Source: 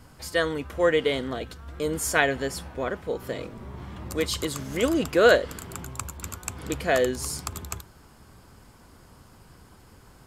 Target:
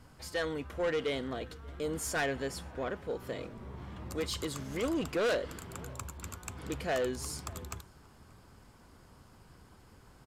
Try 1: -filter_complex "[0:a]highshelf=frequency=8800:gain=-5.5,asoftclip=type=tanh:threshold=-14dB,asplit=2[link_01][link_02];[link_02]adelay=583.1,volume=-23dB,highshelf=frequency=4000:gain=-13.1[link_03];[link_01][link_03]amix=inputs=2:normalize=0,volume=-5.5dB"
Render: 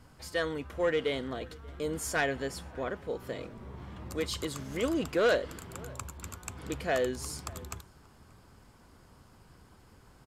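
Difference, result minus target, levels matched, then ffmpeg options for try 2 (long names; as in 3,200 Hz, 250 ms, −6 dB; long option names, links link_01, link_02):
soft clipping: distortion −7 dB
-filter_complex "[0:a]highshelf=frequency=8800:gain=-5.5,asoftclip=type=tanh:threshold=-21dB,asplit=2[link_01][link_02];[link_02]adelay=583.1,volume=-23dB,highshelf=frequency=4000:gain=-13.1[link_03];[link_01][link_03]amix=inputs=2:normalize=0,volume=-5.5dB"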